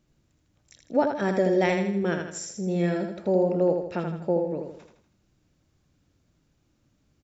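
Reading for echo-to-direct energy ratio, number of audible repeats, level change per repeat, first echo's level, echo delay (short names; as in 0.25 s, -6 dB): -4.5 dB, 5, -7.0 dB, -5.5 dB, 80 ms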